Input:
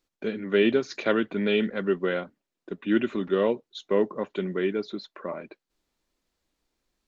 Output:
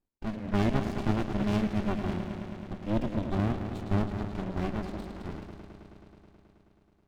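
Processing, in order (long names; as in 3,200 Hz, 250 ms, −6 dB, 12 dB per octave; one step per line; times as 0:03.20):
0:02.01–0:03.40: flat-topped bell 1,100 Hz −14 dB
on a send: echo machine with several playback heads 107 ms, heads first and second, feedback 75%, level −12 dB
on the sum: windowed peak hold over 65 samples
level −2.5 dB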